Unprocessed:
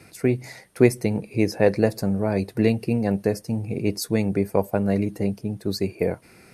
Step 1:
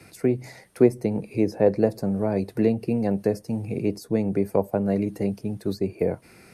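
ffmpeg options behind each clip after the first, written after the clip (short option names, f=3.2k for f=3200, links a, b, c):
-filter_complex "[0:a]acrossover=split=160|1000[a][b][c];[a]alimiter=level_in=6.5dB:limit=-24dB:level=0:latency=1,volume=-6.5dB[d];[c]acompressor=threshold=-44dB:ratio=4[e];[d][b][e]amix=inputs=3:normalize=0"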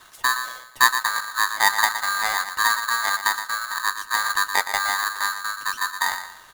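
-filter_complex "[0:a]asplit=2[a][b];[b]adelay=118,lowpass=f=870:p=1,volume=-8.5dB,asplit=2[c][d];[d]adelay=118,lowpass=f=870:p=1,volume=0.38,asplit=2[e][f];[f]adelay=118,lowpass=f=870:p=1,volume=0.38,asplit=2[g][h];[h]adelay=118,lowpass=f=870:p=1,volume=0.38[i];[a][c][e][g][i]amix=inputs=5:normalize=0,aeval=exprs='val(0)*sgn(sin(2*PI*1400*n/s))':c=same"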